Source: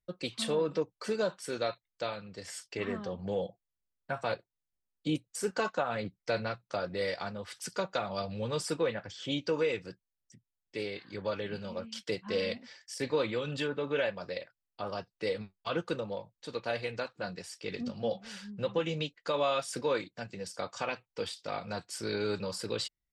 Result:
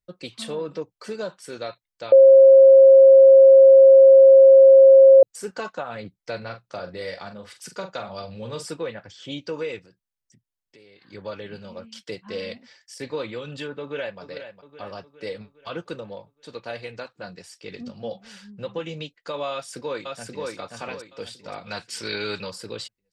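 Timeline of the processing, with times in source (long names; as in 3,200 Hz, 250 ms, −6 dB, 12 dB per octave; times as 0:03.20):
0:02.12–0:05.23: beep over 538 Hz −6.5 dBFS
0:06.37–0:08.71: double-tracking delay 43 ms −9 dB
0:09.79–0:11.02: downward compressor 4 to 1, threshold −51 dBFS
0:13.80–0:14.20: delay throw 410 ms, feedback 55%, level −10 dB
0:19.52–0:20.48: delay throw 530 ms, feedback 35%, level −2 dB
0:21.66–0:22.50: parametric band 2,800 Hz +12 dB 2.5 octaves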